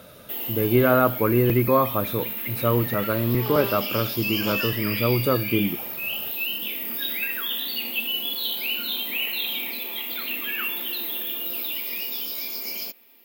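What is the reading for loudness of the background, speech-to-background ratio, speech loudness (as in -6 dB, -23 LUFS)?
-26.5 LUFS, 3.0 dB, -23.5 LUFS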